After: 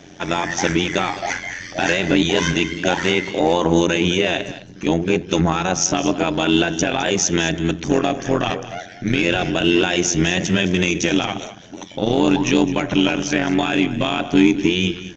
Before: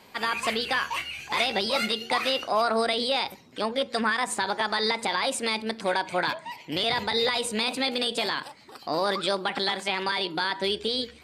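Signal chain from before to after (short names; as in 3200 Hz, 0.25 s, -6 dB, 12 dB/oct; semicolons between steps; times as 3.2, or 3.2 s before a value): thirty-one-band EQ 160 Hz +11 dB, 250 Hz +7 dB, 400 Hz +12 dB, 1600 Hz -8 dB, 8000 Hz +11 dB; in parallel at -4 dB: soft clip -21.5 dBFS, distortion -11 dB; on the sum: AM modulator 120 Hz, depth 70%; on a send: echo 0.156 s -14.5 dB; on the sum: downsampling 22050 Hz; speed mistake 45 rpm record played at 33 rpm; gain +6 dB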